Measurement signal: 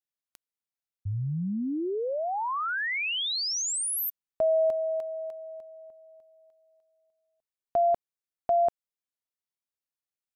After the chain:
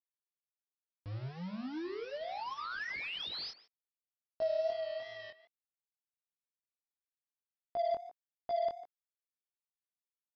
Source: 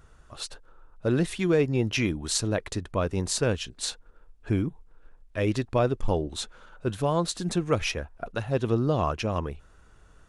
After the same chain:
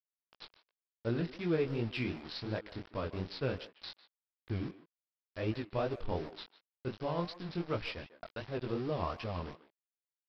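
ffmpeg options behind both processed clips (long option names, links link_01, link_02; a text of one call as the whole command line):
ffmpeg -i in.wav -filter_complex "[0:a]aresample=11025,aeval=exprs='val(0)*gte(abs(val(0)),0.0237)':channel_layout=same,aresample=44100,asplit=2[link_01][link_02];[link_02]adelay=150,highpass=300,lowpass=3400,asoftclip=type=hard:threshold=-20dB,volume=-14dB[link_03];[link_01][link_03]amix=inputs=2:normalize=0,flanger=delay=17:depth=6.9:speed=2.7,aeval=exprs='0.211*(cos(1*acos(clip(val(0)/0.211,-1,1)))-cos(1*PI/2))+0.00299*(cos(7*acos(clip(val(0)/0.211,-1,1)))-cos(7*PI/2))':channel_layout=same,volume=-7dB" out.wav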